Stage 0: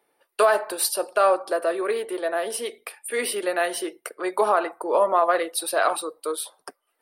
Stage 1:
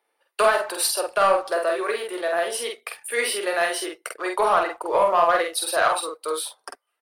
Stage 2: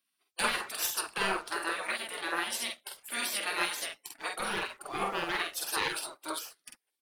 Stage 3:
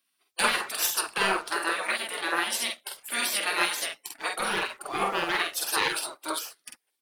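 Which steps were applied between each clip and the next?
meter weighting curve A; leveller curve on the samples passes 1; double-tracking delay 47 ms −3.5 dB; level −2 dB
gate on every frequency bin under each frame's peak −15 dB weak
low-shelf EQ 130 Hz −7 dB; level +5.5 dB

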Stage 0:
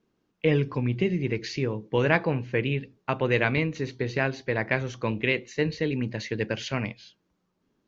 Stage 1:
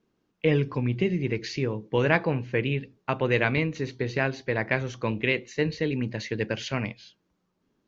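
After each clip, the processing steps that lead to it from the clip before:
no processing that can be heard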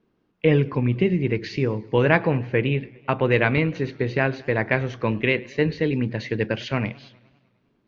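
high-frequency loss of the air 170 metres
feedback echo with a swinging delay time 101 ms, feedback 64%, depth 177 cents, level −23 dB
level +5 dB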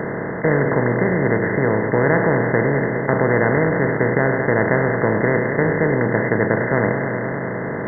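compressor on every frequency bin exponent 0.2
linear-phase brick-wall low-pass 2,100 Hz
level −4 dB

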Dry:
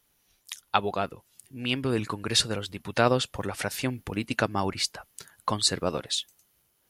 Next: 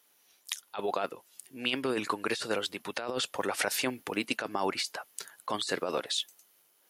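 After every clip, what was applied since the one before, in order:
high-pass filter 350 Hz 12 dB per octave
compressor whose output falls as the input rises −31 dBFS, ratio −1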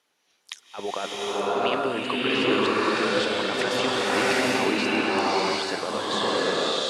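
high-frequency loss of the air 80 metres
slow-attack reverb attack 760 ms, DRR −9 dB
level +1 dB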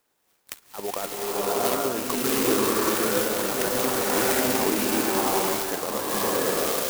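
converter with an unsteady clock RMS 0.099 ms

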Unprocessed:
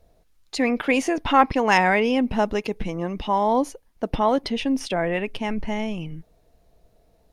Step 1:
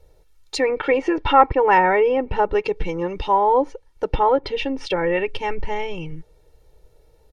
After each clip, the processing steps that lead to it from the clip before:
treble cut that deepens with the level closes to 1,600 Hz, closed at −17 dBFS
comb filter 2.2 ms, depth 96%
level +1 dB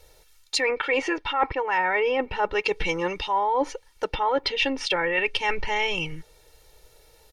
tilt shelving filter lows −8.5 dB, about 890 Hz
reversed playback
downward compressor 10 to 1, threshold −25 dBFS, peak gain reduction 18.5 dB
reversed playback
level +4.5 dB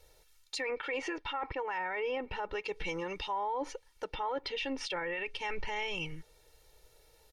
brickwall limiter −20 dBFS, peak gain reduction 9 dB
level −7.5 dB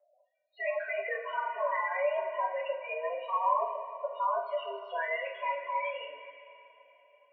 spectral peaks only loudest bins 8
coupled-rooms reverb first 0.33 s, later 3.3 s, from −18 dB, DRR −6 dB
single-sideband voice off tune +130 Hz 380–2,200 Hz

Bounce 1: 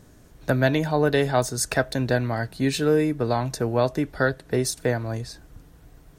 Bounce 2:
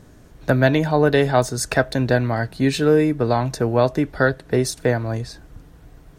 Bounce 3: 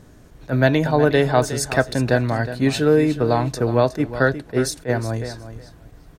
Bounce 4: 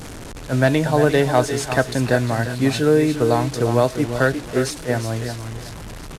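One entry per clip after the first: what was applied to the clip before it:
high-shelf EQ 5,500 Hz −6.5 dB; level +4.5 dB
repeating echo 365 ms, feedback 17%, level −12.5 dB; level that may rise only so fast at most 370 dB per second
linear delta modulator 64 kbit/s, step −28.5 dBFS; single-tap delay 348 ms −11.5 dB

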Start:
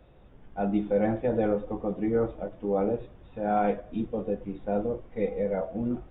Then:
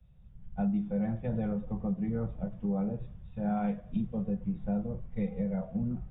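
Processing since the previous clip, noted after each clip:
low shelf with overshoot 240 Hz +9 dB, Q 3
downward compressor 5 to 1, threshold −26 dBFS, peak gain reduction 11.5 dB
multiband upward and downward expander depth 70%
level −2.5 dB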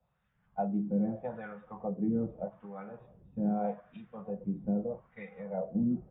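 LFO wah 0.81 Hz 290–1,700 Hz, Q 2.3
level +8.5 dB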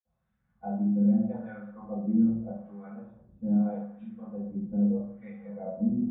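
convolution reverb RT60 0.60 s, pre-delay 46 ms
level −4 dB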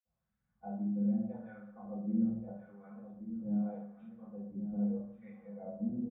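single-tap delay 1,131 ms −10 dB
level −8.5 dB

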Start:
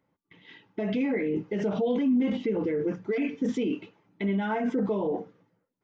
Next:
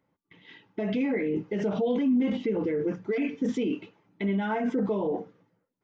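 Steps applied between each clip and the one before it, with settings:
no processing that can be heard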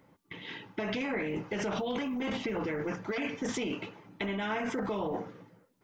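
dynamic equaliser 3,500 Hz, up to −6 dB, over −56 dBFS, Q 1.3
every bin compressed towards the loudest bin 2 to 1
level −4 dB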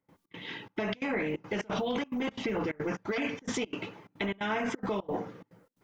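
gate pattern ".xx.xxxx" 177 BPM −24 dB
level +2 dB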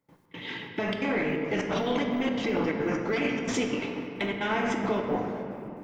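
in parallel at −7 dB: soft clipping −29.5 dBFS, distortion −14 dB
on the sum: rectangular room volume 150 cubic metres, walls hard, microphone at 0.33 metres

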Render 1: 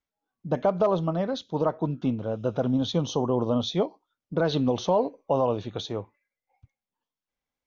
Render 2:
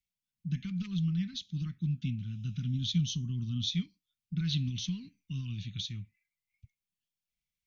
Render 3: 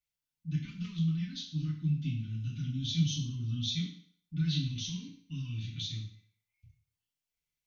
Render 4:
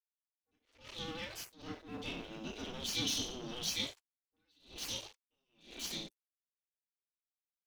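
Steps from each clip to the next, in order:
elliptic band-stop filter 180–2,300 Hz, stop band 70 dB
feedback delay network reverb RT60 0.57 s, low-frequency decay 0.8×, high-frequency decay 0.95×, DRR −6 dB; level −6.5 dB
dead-zone distortion −47 dBFS; gate on every frequency bin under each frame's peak −15 dB weak; level that may rise only so fast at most 130 dB per second; level +8.5 dB

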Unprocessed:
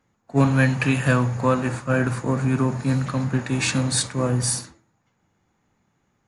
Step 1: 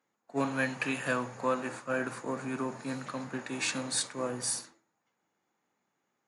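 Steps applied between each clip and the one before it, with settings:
high-pass filter 310 Hz 12 dB per octave
level −8 dB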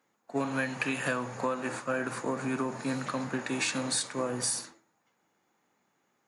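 downward compressor 6 to 1, threshold −33 dBFS, peak gain reduction 9.5 dB
level +6 dB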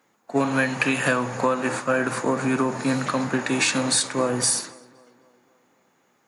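tape delay 260 ms, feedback 60%, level −20.5 dB, low-pass 2,400 Hz
level +9 dB

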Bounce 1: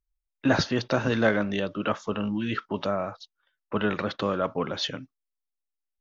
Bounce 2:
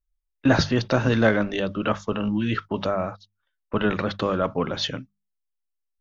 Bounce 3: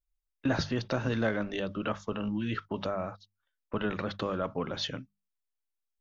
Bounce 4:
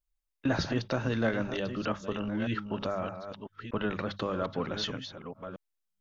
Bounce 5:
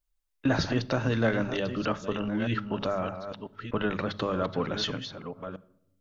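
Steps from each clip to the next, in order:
mains-hum notches 50/100/150/200 Hz; noise gate −37 dBFS, range −9 dB; low-shelf EQ 100 Hz +12 dB; level +2.5 dB
downward compressor 1.5 to 1, threshold −27 dBFS, peak gain reduction 5.5 dB; level −5.5 dB
delay that plays each chunk backwards 618 ms, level −9 dB
rectangular room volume 2,300 cubic metres, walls furnished, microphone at 0.4 metres; level +3 dB

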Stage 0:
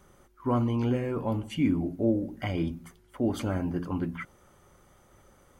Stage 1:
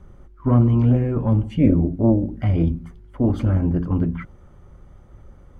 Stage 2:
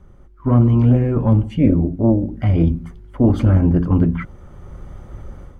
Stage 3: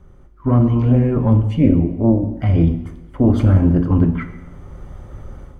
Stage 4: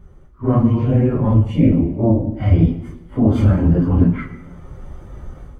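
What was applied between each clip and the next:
RIAA equalisation playback; harmonic generator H 2 −8 dB, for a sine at −6.5 dBFS; level +2 dB
automatic gain control gain up to 12 dB; level −1 dB
convolution reverb RT60 1.0 s, pre-delay 5 ms, DRR 8 dB
random phases in long frames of 100 ms

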